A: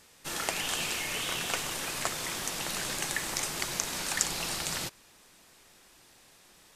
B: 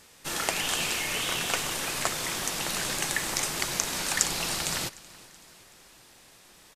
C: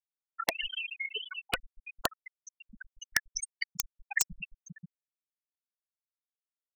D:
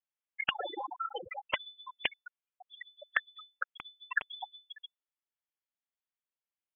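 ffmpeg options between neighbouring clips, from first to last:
ffmpeg -i in.wav -af "aecho=1:1:378|756|1134|1512:0.0794|0.0429|0.0232|0.0125,volume=3.5dB" out.wav
ffmpeg -i in.wav -af "afftfilt=real='re*gte(hypot(re,im),0.126)':imag='im*gte(hypot(re,im),0.126)':win_size=1024:overlap=0.75,aeval=exprs='(mod(7.94*val(0)+1,2)-1)/7.94':channel_layout=same,volume=4dB" out.wav
ffmpeg -i in.wav -af "lowpass=frequency=3000:width_type=q:width=0.5098,lowpass=frequency=3000:width_type=q:width=0.6013,lowpass=frequency=3000:width_type=q:width=0.9,lowpass=frequency=3000:width_type=q:width=2.563,afreqshift=-3500" out.wav

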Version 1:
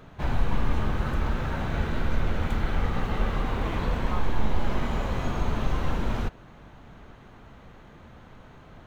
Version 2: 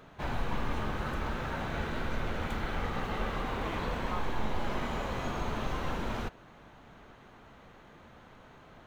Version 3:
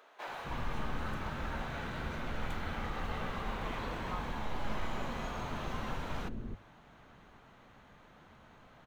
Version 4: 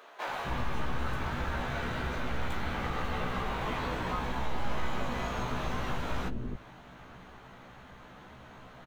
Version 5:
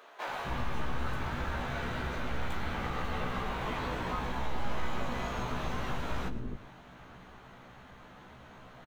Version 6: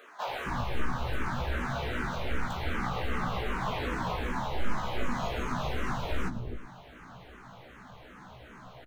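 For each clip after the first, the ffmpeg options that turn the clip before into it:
ffmpeg -i in.wav -af "lowshelf=frequency=190:gain=-9,volume=-2dB" out.wav
ffmpeg -i in.wav -filter_complex "[0:a]bandreject=frequency=50:width_type=h:width=6,bandreject=frequency=100:width_type=h:width=6,acrossover=split=400[link_01][link_02];[link_01]adelay=260[link_03];[link_03][link_02]amix=inputs=2:normalize=0,volume=-3.5dB" out.wav
ffmpeg -i in.wav -filter_complex "[0:a]asplit=2[link_01][link_02];[link_02]adelay=16,volume=-4dB[link_03];[link_01][link_03]amix=inputs=2:normalize=0,asplit=2[link_04][link_05];[link_05]acompressor=threshold=-39dB:ratio=6,volume=0.5dB[link_06];[link_04][link_06]amix=inputs=2:normalize=0" out.wav
ffmpeg -i in.wav -af "aecho=1:1:114:0.158,volume=-1.5dB" out.wav
ffmpeg -i in.wav -filter_complex "[0:a]asplit=2[link_01][link_02];[link_02]afreqshift=-2.6[link_03];[link_01][link_03]amix=inputs=2:normalize=1,volume=5.5dB" out.wav

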